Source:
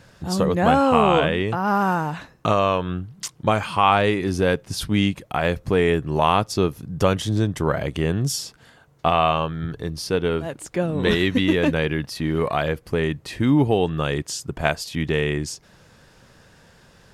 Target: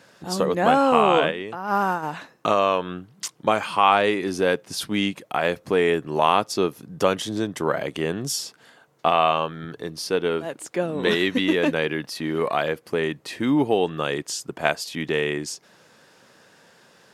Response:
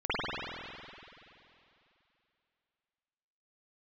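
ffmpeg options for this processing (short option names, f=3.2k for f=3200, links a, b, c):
-filter_complex "[0:a]highpass=250,asplit=3[a][b][c];[a]afade=t=out:st=1.3:d=0.02[d];[b]agate=range=-7dB:threshold=-20dB:ratio=16:detection=peak,afade=t=in:st=1.3:d=0.02,afade=t=out:st=2.02:d=0.02[e];[c]afade=t=in:st=2.02:d=0.02[f];[d][e][f]amix=inputs=3:normalize=0"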